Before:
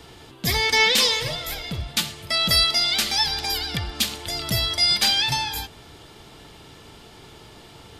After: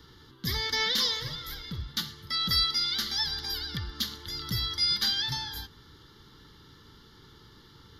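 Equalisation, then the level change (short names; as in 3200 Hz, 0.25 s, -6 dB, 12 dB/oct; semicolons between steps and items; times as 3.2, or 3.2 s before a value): fixed phaser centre 2500 Hz, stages 6; -6.0 dB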